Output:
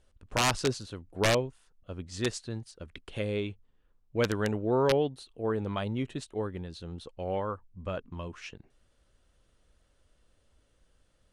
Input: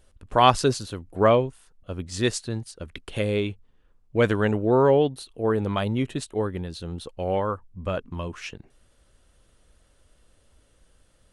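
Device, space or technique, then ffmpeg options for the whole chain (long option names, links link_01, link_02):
overflowing digital effects unit: -af "aeval=exprs='(mod(3.16*val(0)+1,2)-1)/3.16':channel_layout=same,lowpass=8300,volume=-7dB"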